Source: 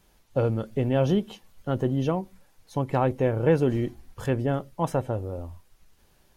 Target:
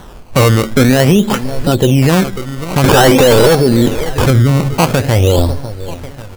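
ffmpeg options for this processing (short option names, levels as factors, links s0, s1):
-filter_complex "[0:a]asplit=3[s0][s1][s2];[s0]afade=t=out:st=1.19:d=0.02[s3];[s1]acontrast=33,afade=t=in:st=1.19:d=0.02,afade=t=out:st=1.75:d=0.02[s4];[s2]afade=t=in:st=1.75:d=0.02[s5];[s3][s4][s5]amix=inputs=3:normalize=0,asettb=1/sr,asplit=3[s6][s7][s8];[s6]atrim=end=2.844[s9];[s7]atrim=start=2.84:end=3.55,asetpts=PTS-STARTPTS,afade=t=in:d=0.004:c=qsin,afade=t=out:st=0.706:d=0.004:c=qsin,asplit=2[s10][s11];[s11]highpass=f=720:p=1,volume=70.8,asoftclip=type=tanh:threshold=0.355[s12];[s10][s12]amix=inputs=2:normalize=0,lowpass=f=1300:p=1,volume=0.501[s13];[s8]atrim=start=3.546[s14];[s9][s13]acrossfade=d=0.004:c1=hsin:c2=qsin[s15];[s15][s14]acrossfade=d=0.004:c1=qsin:c2=hsin,aphaser=in_gain=1:out_gain=1:delay=4.9:decay=0.32:speed=0.42:type=sinusoidal,acompressor=threshold=0.0501:ratio=5,asplit=2[s16][s17];[s17]adelay=545,lowpass=f=4100:p=1,volume=0.126,asplit=2[s18][s19];[s19]adelay=545,lowpass=f=4100:p=1,volume=0.45,asplit=2[s20][s21];[s21]adelay=545,lowpass=f=4100:p=1,volume=0.45,asplit=2[s22][s23];[s23]adelay=545,lowpass=f=4100:p=1,volume=0.45[s24];[s16][s18][s20][s22][s24]amix=inputs=5:normalize=0,acrusher=samples=18:mix=1:aa=0.000001:lfo=1:lforange=18:lforate=0.49,asettb=1/sr,asplit=3[s25][s26][s27];[s25]atrim=end=4.304[s28];[s26]atrim=start=4.3:end=4.74,asetpts=PTS-STARTPTS,afade=t=in:d=0.004:c=qsin,afade=t=out:st=0.436:d=0.004:c=qsin,equalizer=f=130:w=0.55:g=8.5[s29];[s27]atrim=start=4.736[s30];[s28][s29]acrossfade=d=0.004:c1=hsin:c2=qsin[s31];[s31][s30]acrossfade=d=0.004:c1=qsin:c2=hsin,alimiter=level_in=20:limit=0.891:release=50:level=0:latency=1,volume=0.891"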